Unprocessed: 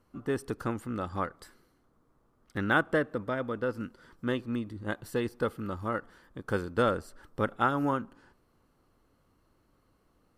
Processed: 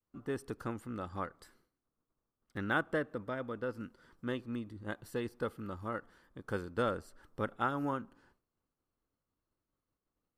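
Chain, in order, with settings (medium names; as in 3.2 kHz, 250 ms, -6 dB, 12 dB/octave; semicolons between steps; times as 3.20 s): expander -58 dBFS; trim -6.5 dB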